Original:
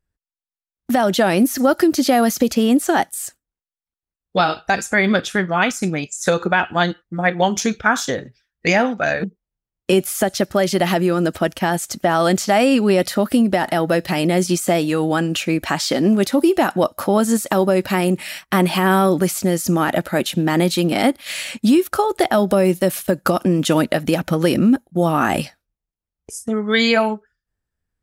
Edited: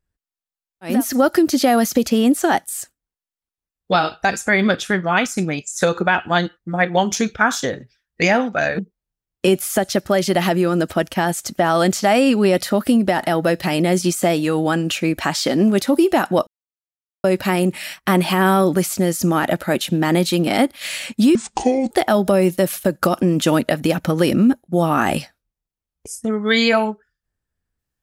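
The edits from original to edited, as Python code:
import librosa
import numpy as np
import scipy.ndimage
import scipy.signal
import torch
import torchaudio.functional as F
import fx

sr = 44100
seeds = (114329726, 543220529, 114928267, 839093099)

y = fx.edit(x, sr, fx.cut(start_s=0.93, length_s=0.45, crossfade_s=0.24),
    fx.silence(start_s=16.92, length_s=0.77),
    fx.speed_span(start_s=21.8, length_s=0.34, speed=0.61), tone=tone)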